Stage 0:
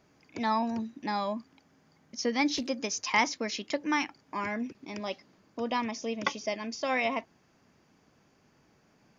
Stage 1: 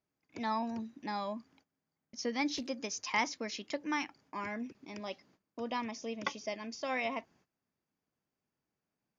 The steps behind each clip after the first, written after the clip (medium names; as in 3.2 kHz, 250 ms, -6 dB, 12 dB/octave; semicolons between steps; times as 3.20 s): gate -59 dBFS, range -18 dB; trim -6 dB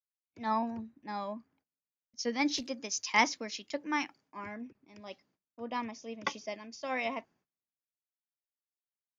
three bands expanded up and down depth 100%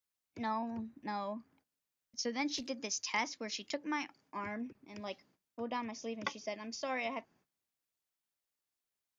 compression 2.5:1, threshold -44 dBFS, peak gain reduction 16 dB; trim +5.5 dB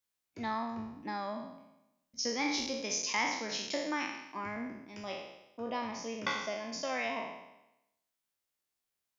spectral sustain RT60 0.90 s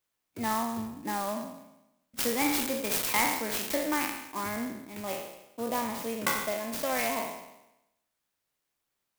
sampling jitter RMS 0.06 ms; trim +5.5 dB